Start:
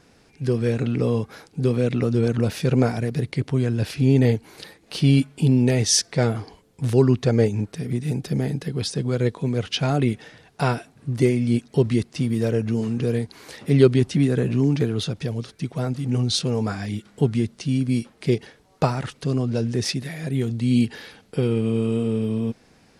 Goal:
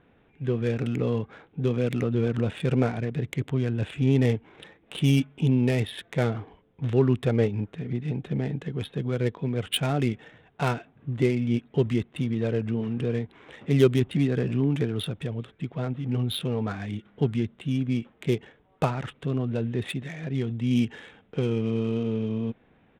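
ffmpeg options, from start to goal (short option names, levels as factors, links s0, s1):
-af "aresample=8000,aresample=44100,adynamicsmooth=sensitivity=4:basefreq=2300,aemphasis=mode=production:type=75kf,volume=0.596"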